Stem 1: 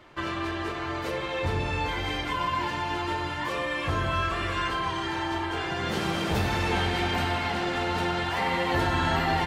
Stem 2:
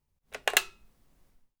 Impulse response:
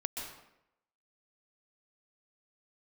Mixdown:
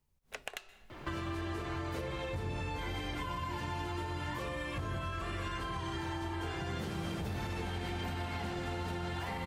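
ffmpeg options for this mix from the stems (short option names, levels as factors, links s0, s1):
-filter_complex "[0:a]lowshelf=f=340:g=7.5,alimiter=limit=0.0891:level=0:latency=1:release=286,adelay=900,volume=1.26[s0];[1:a]acompressor=threshold=0.0224:ratio=4,volume=0.944,asplit=2[s1][s2];[s2]volume=0.112[s3];[2:a]atrim=start_sample=2205[s4];[s3][s4]afir=irnorm=-1:irlink=0[s5];[s0][s1][s5]amix=inputs=3:normalize=0,acrossover=split=120|7300[s6][s7][s8];[s6]acompressor=threshold=0.00794:ratio=4[s9];[s7]acompressor=threshold=0.0112:ratio=4[s10];[s8]acompressor=threshold=0.00112:ratio=4[s11];[s9][s10][s11]amix=inputs=3:normalize=0"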